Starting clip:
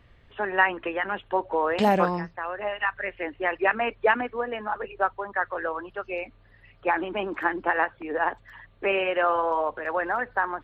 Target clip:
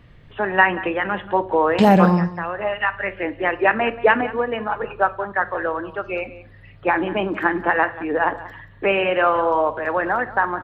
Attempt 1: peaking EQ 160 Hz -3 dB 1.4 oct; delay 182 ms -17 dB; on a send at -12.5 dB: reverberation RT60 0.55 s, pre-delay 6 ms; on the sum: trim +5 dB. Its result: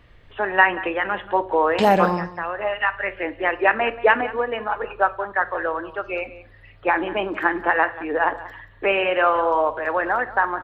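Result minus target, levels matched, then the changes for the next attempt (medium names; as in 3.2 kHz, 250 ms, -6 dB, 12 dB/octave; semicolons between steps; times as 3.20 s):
125 Hz band -8.5 dB
change: peaking EQ 160 Hz +8 dB 1.4 oct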